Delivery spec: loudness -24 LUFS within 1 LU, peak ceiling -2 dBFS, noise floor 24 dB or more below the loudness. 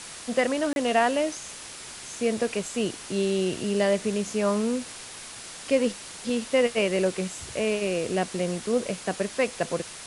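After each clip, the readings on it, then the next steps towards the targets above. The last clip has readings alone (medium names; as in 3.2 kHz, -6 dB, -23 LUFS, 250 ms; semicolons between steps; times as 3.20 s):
dropouts 1; longest dropout 31 ms; noise floor -41 dBFS; noise floor target -51 dBFS; loudness -26.5 LUFS; peak level -9.5 dBFS; loudness target -24.0 LUFS
-> interpolate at 0.73 s, 31 ms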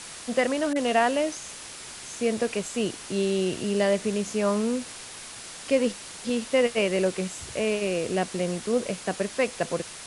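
dropouts 0; noise floor -41 dBFS; noise floor target -51 dBFS
-> noise reduction 10 dB, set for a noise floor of -41 dBFS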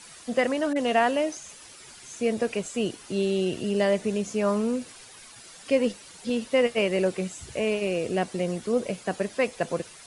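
noise floor -48 dBFS; noise floor target -51 dBFS
-> noise reduction 6 dB, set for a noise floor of -48 dBFS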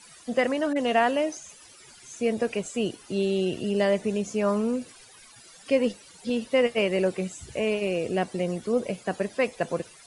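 noise floor -51 dBFS; loudness -27.0 LUFS; peak level -9.5 dBFS; loudness target -24.0 LUFS
-> trim +3 dB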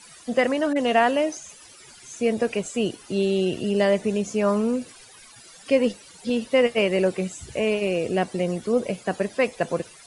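loudness -24.0 LUFS; peak level -6.5 dBFS; noise floor -48 dBFS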